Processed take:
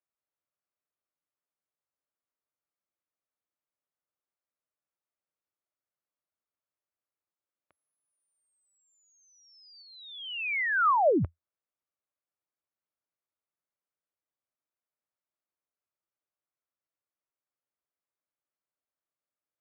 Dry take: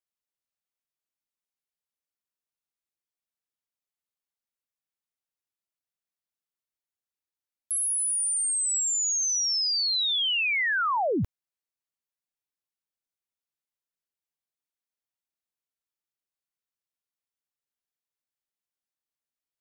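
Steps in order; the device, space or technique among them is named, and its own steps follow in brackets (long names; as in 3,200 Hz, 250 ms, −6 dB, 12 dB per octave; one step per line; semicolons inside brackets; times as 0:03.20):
0:09.82–0:10.75: bass and treble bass +2 dB, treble −5 dB
bass cabinet (loudspeaker in its box 80–2,200 Hz, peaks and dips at 84 Hz +4 dB, 220 Hz −4 dB, 320 Hz +3 dB, 590 Hz +6 dB, 1,200 Hz +4 dB, 1,800 Hz −3 dB)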